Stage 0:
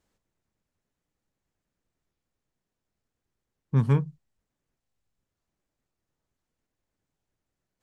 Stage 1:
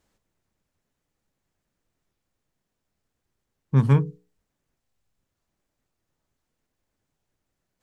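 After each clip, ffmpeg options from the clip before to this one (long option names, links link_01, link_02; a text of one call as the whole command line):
ffmpeg -i in.wav -af "bandreject=frequency=60:width_type=h:width=6,bandreject=frequency=120:width_type=h:width=6,bandreject=frequency=180:width_type=h:width=6,bandreject=frequency=240:width_type=h:width=6,bandreject=frequency=300:width_type=h:width=6,bandreject=frequency=360:width_type=h:width=6,bandreject=frequency=420:width_type=h:width=6,bandreject=frequency=480:width_type=h:width=6,volume=4.5dB" out.wav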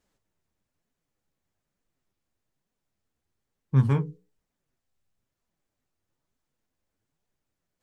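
ffmpeg -i in.wav -af "flanger=delay=3.8:depth=10:regen=49:speed=1.1:shape=triangular" out.wav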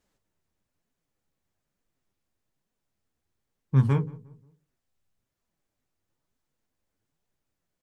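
ffmpeg -i in.wav -filter_complex "[0:a]asplit=2[link_01][link_02];[link_02]adelay=178,lowpass=frequency=1100:poles=1,volume=-20.5dB,asplit=2[link_03][link_04];[link_04]adelay=178,lowpass=frequency=1100:poles=1,volume=0.41,asplit=2[link_05][link_06];[link_06]adelay=178,lowpass=frequency=1100:poles=1,volume=0.41[link_07];[link_01][link_03][link_05][link_07]amix=inputs=4:normalize=0" out.wav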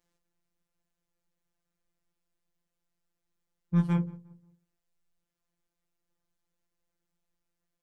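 ffmpeg -i in.wav -af "afftfilt=real='hypot(re,im)*cos(PI*b)':imag='0':win_size=1024:overlap=0.75" out.wav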